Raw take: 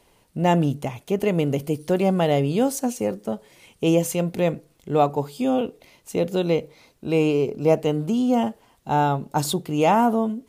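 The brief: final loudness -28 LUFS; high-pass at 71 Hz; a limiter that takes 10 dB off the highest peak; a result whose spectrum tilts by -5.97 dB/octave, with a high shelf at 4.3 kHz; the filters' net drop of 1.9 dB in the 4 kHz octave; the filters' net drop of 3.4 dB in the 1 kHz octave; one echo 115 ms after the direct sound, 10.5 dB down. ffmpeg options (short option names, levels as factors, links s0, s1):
-af "highpass=71,equalizer=f=1000:t=o:g=-5,equalizer=f=4000:t=o:g=-5.5,highshelf=f=4300:g=6,alimiter=limit=0.141:level=0:latency=1,aecho=1:1:115:0.299,volume=0.841"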